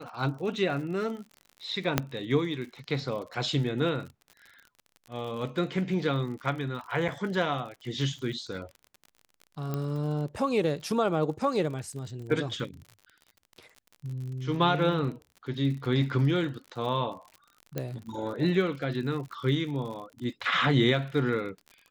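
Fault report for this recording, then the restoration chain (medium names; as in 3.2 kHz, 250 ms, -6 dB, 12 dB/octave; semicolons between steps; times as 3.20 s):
crackle 54 per s -38 dBFS
1.98 s: pop -7 dBFS
7.08–7.09 s: dropout 5.8 ms
9.74 s: pop -19 dBFS
17.78 s: pop -17 dBFS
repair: de-click; interpolate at 7.08 s, 5.8 ms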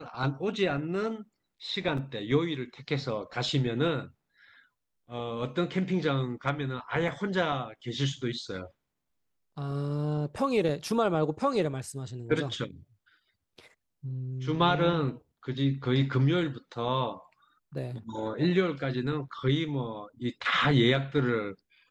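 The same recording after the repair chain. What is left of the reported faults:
1.98 s: pop
17.78 s: pop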